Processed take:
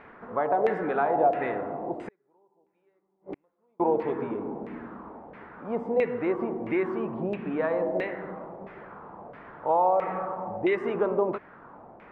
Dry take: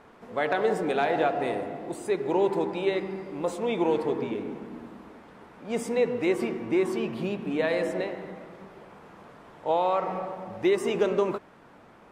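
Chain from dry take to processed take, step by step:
in parallel at 0 dB: downward compressor, threshold −35 dBFS, peak gain reduction 15 dB
0:02.08–0:03.80: on the sum: gate with flip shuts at −23 dBFS, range −41 dB
auto-filter low-pass saw down 1.5 Hz 670–2,300 Hz
level −4.5 dB

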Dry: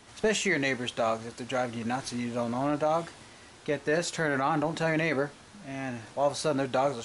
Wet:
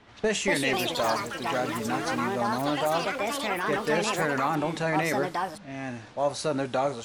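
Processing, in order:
low-pass that shuts in the quiet parts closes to 2,900 Hz, open at −27.5 dBFS
delay with pitch and tempo change per echo 298 ms, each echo +5 semitones, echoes 3

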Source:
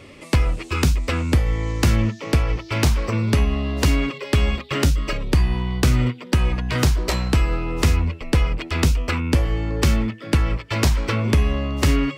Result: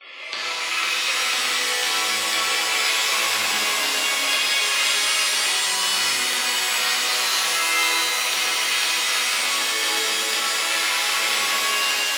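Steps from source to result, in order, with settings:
fade-out on the ending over 0.69 s
high-pass filter 760 Hz 12 dB per octave
noise gate with hold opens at −40 dBFS
gate on every frequency bin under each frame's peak −15 dB strong
spectral tilt +2.5 dB per octave
downward compressor, threshold −31 dBFS, peak gain reduction 14.5 dB
high shelf with overshoot 6,000 Hz −14 dB, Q 1.5
reverb with rising layers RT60 4 s, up +7 semitones, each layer −2 dB, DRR −10.5 dB

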